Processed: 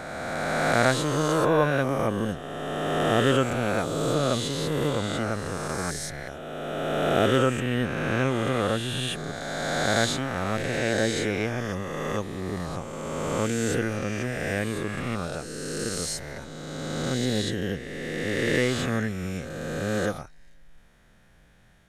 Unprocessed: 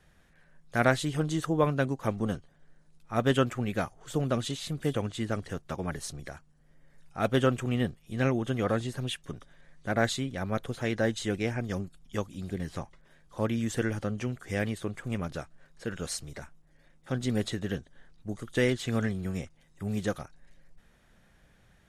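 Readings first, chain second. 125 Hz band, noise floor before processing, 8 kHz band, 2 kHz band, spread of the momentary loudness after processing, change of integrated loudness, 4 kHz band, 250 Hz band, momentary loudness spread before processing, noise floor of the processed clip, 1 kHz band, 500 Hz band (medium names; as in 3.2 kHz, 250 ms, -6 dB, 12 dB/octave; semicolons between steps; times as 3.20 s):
+2.5 dB, -62 dBFS, +8.0 dB, +7.0 dB, 11 LU, +4.5 dB, +8.0 dB, +3.5 dB, 14 LU, -52 dBFS, +7.0 dB, +6.0 dB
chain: reverse spectral sustain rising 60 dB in 2.71 s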